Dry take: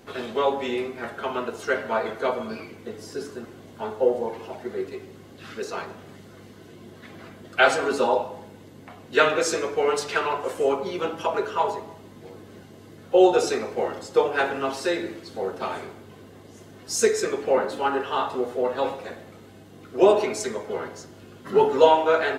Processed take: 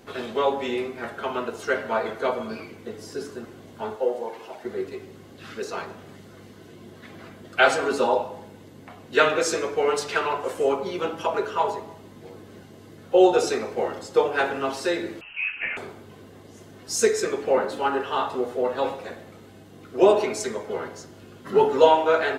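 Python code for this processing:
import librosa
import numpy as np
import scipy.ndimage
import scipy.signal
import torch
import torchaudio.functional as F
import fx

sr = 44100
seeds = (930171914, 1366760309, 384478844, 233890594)

y = fx.highpass(x, sr, hz=550.0, slope=6, at=(3.96, 4.65))
y = fx.freq_invert(y, sr, carrier_hz=3000, at=(15.21, 15.77))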